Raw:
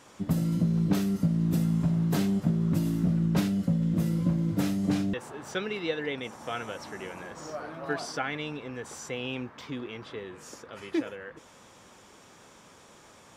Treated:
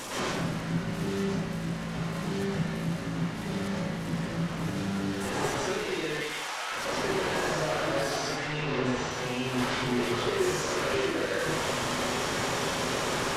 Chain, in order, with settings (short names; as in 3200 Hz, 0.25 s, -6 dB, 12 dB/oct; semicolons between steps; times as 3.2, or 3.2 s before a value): delta modulation 64 kbps, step -26 dBFS; 6.08–6.72 HPF 1000 Hz 12 dB/oct; limiter -26 dBFS, peak gain reduction 11 dB; 8.36–9.11 LPF 4500 Hz 12 dB/oct; reverb RT60 1.0 s, pre-delay 98 ms, DRR -9.5 dB; gain -6.5 dB